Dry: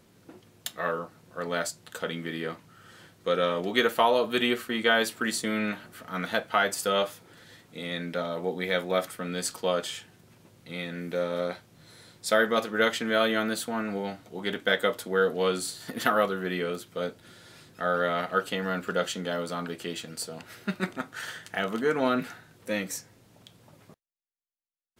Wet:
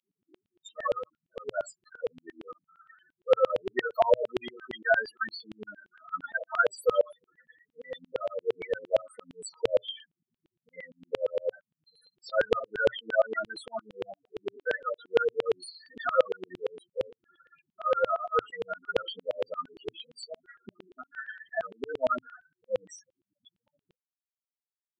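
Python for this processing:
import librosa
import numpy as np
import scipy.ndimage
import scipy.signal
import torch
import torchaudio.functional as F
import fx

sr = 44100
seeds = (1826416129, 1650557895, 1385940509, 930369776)

y = fx.spec_topn(x, sr, count=4)
y = fx.filter_lfo_highpass(y, sr, shape='saw_down', hz=8.7, low_hz=430.0, high_hz=3100.0, q=3.0)
y = fx.dynamic_eq(y, sr, hz=120.0, q=5.5, threshold_db=-60.0, ratio=4.0, max_db=4)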